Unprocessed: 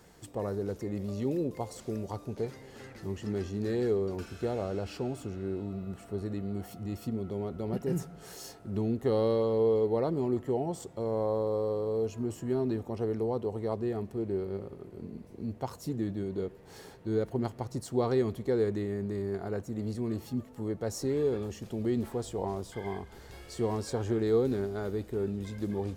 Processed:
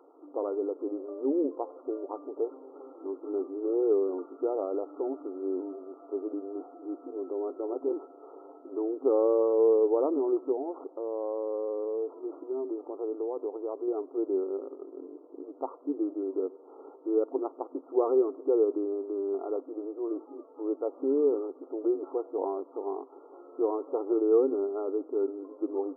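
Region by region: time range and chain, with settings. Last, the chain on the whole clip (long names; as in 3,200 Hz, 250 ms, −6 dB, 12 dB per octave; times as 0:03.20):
0:10.52–0:13.88: downward compressor 2 to 1, threshold −35 dBFS + linearly interpolated sample-rate reduction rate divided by 6×
whole clip: brick-wall band-pass 260–1,400 Hz; low-shelf EQ 440 Hz +7.5 dB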